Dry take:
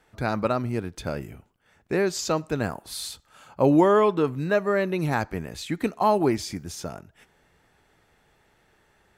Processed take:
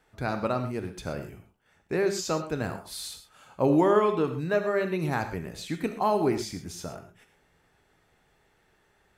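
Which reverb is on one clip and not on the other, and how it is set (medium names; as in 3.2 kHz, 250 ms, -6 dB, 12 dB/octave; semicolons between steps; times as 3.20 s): gated-style reverb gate 150 ms flat, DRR 7 dB; trim -4 dB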